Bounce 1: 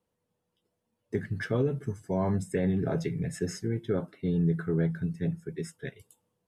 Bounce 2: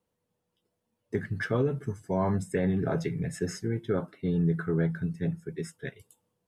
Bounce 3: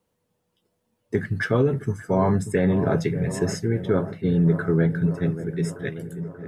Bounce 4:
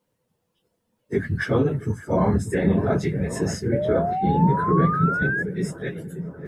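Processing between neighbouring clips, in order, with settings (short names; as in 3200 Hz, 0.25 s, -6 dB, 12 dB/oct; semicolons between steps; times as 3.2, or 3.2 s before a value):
dynamic EQ 1200 Hz, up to +5 dB, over -47 dBFS, Q 1.1
dark delay 0.585 s, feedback 67%, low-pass 1400 Hz, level -12 dB; gain +6.5 dB
phase scrambler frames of 50 ms; painted sound rise, 3.72–5.43, 560–1700 Hz -25 dBFS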